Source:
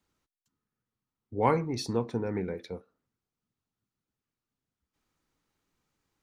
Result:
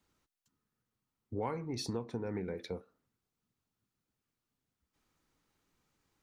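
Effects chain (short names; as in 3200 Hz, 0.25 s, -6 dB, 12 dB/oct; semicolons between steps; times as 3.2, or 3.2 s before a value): compressor 5:1, threshold -36 dBFS, peak gain reduction 15.5 dB; gain +1.5 dB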